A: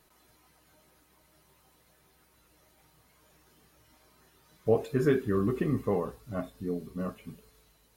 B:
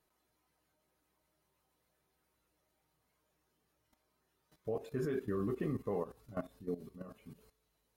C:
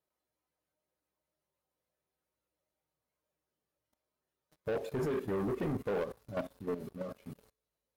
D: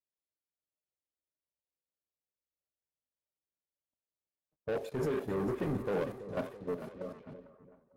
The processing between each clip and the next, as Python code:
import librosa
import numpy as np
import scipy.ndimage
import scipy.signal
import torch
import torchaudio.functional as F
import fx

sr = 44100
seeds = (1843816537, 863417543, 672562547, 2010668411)

y1 = fx.peak_eq(x, sr, hz=550.0, db=3.0, octaves=2.2)
y1 = fx.level_steps(y1, sr, step_db=15)
y1 = y1 * librosa.db_to_amplitude(-5.0)
y2 = scipy.signal.sosfilt(scipy.signal.butter(2, 47.0, 'highpass', fs=sr, output='sos'), y1)
y2 = fx.peak_eq(y2, sr, hz=550.0, db=8.5, octaves=0.31)
y2 = fx.leveller(y2, sr, passes=3)
y2 = y2 * librosa.db_to_amplitude(-5.0)
y3 = fx.echo_split(y2, sr, split_hz=580.0, low_ms=332, high_ms=450, feedback_pct=52, wet_db=-9.0)
y3 = fx.env_lowpass(y3, sr, base_hz=790.0, full_db=-34.5)
y3 = fx.band_widen(y3, sr, depth_pct=40)